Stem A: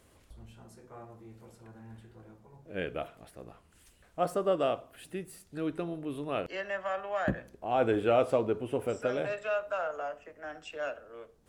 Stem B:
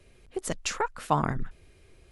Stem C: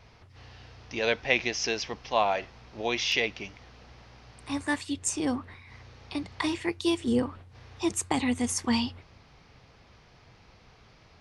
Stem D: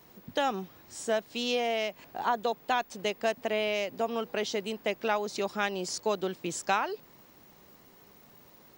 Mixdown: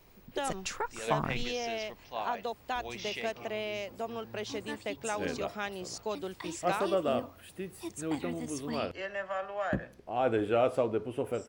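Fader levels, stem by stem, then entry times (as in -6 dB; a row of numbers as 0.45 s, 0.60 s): -1.5 dB, -6.0 dB, -13.0 dB, -6.5 dB; 2.45 s, 0.00 s, 0.00 s, 0.00 s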